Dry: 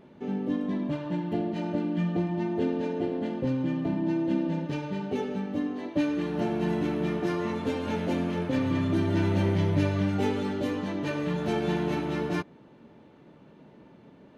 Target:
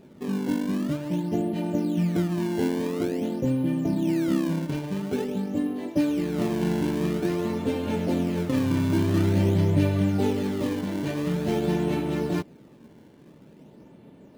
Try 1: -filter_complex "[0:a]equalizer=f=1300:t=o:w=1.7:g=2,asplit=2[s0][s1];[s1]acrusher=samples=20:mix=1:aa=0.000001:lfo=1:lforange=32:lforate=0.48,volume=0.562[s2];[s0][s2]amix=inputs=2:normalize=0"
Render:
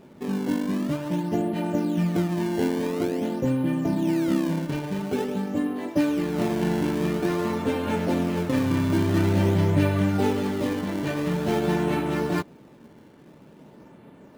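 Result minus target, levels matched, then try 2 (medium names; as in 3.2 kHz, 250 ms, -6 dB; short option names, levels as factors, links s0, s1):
1 kHz band +4.0 dB
-filter_complex "[0:a]equalizer=f=1300:t=o:w=1.7:g=-6,asplit=2[s0][s1];[s1]acrusher=samples=20:mix=1:aa=0.000001:lfo=1:lforange=32:lforate=0.48,volume=0.562[s2];[s0][s2]amix=inputs=2:normalize=0"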